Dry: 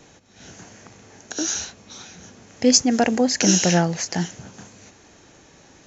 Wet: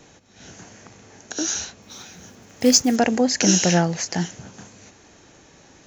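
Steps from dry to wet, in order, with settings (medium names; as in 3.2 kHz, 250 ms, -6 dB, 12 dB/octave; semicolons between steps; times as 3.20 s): 1.82–2.96 s: block-companded coder 5-bit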